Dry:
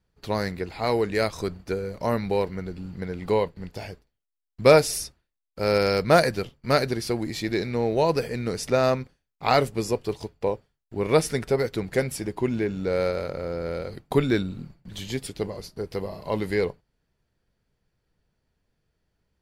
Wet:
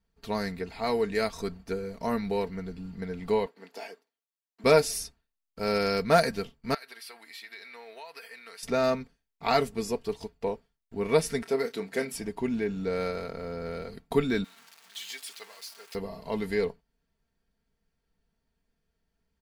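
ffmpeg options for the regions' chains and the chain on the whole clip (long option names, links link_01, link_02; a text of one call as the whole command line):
ffmpeg -i in.wav -filter_complex "[0:a]asettb=1/sr,asplit=3[link_01][link_02][link_03];[link_01]atrim=end=3.464[link_04];[link_02]atrim=start=3.46:end=4.64,asetpts=PTS-STARTPTS,afade=type=in:duration=0.004:curve=qsin,afade=type=out:start_time=1.176:duration=0.004:curve=qsin,highpass=frequency=300:width=0.5412,highpass=frequency=300:width=1.3066,equalizer=frequency=1100:width_type=o:width=1.6:gain=3[link_05];[link_03]atrim=start=4.636[link_06];[link_04][link_05]acrossfade=duration=0.004:curve1=hsin:curve2=qsin[link_07];[link_07][link_06]acrossfade=duration=0.004:curve1=qsin:curve2=hsin,asettb=1/sr,asplit=3[link_08][link_09][link_10];[link_08]atrim=end=6.744[link_11];[link_09]atrim=start=6.74:end=8.63,asetpts=PTS-STARTPTS,afade=type=in:duration=0.004:curve=qsin,afade=type=out:start_time=1.886:duration=0.004:curve=qsin,highpass=1300,equalizer=frequency=6500:width_type=o:width=0.73:gain=-12.5,acompressor=threshold=-36dB:ratio=5:attack=3.2:release=140:knee=1:detection=peak[link_12];[link_10]atrim=start=8.626[link_13];[link_11][link_12]acrossfade=duration=0.004:curve1=hsin:curve2=qsin[link_14];[link_14][link_13]acrossfade=duration=0.004:curve1=qsin:curve2=hsin,asettb=1/sr,asplit=3[link_15][link_16][link_17];[link_15]atrim=end=11.424[link_18];[link_16]atrim=start=11.42:end=12.14,asetpts=PTS-STARTPTS,afade=type=in:duration=0.004:curve=qsin,afade=type=out:start_time=0.716:duration=0.004:curve=qsin,highpass=240,asplit=2[link_19][link_20];[link_20]adelay=30,volume=-10dB[link_21];[link_19][link_21]amix=inputs=2:normalize=0,atrim=end_sample=31752[link_22];[link_17]atrim=start=12.136[link_23];[link_18][link_22]acrossfade=duration=0.004:curve1=hsin:curve2=qsin[link_24];[link_24][link_23]acrossfade=duration=0.004:curve1=qsin:curve2=hsin,asettb=1/sr,asplit=3[link_25][link_26][link_27];[link_25]atrim=end=14.444[link_28];[link_26]atrim=start=14.44:end=15.95,asetpts=PTS-STARTPTS,afade=type=in:duration=0.004:curve=qsin,afade=type=out:start_time=1.506:duration=0.004:curve=qsin,aeval=exprs='val(0)+0.5*0.015*sgn(val(0))':channel_layout=same,highpass=1300,deesser=0.6[link_29];[link_27]atrim=start=15.946[link_30];[link_28][link_29]acrossfade=duration=0.004:curve1=hsin:curve2=qsin[link_31];[link_31][link_30]acrossfade=duration=0.004:curve1=qsin:curve2=hsin,equalizer=frequency=520:width=6:gain=-4.5,aecho=1:1:4.4:0.6,volume=-5dB" out.wav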